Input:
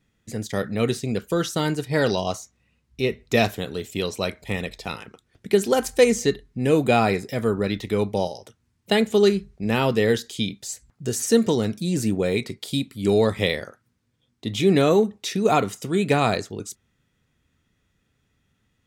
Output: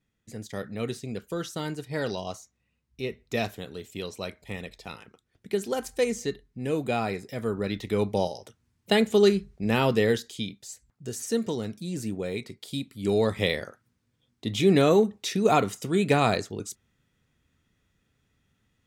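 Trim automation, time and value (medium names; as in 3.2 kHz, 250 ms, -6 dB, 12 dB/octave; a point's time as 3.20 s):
7.17 s -9 dB
8.11 s -2 dB
9.97 s -2 dB
10.60 s -9 dB
12.52 s -9 dB
13.63 s -2 dB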